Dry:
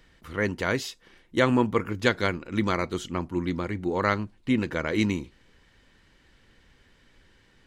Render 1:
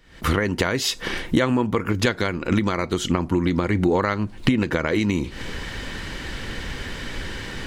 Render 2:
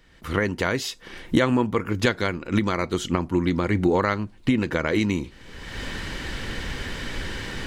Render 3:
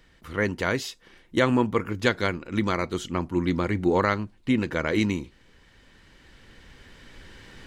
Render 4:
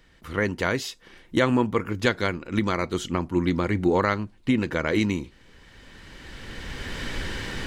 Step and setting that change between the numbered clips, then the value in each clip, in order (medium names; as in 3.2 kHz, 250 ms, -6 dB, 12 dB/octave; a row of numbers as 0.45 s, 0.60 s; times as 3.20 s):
recorder AGC, rising by: 87 dB/s, 36 dB/s, 5.4 dB/s, 14 dB/s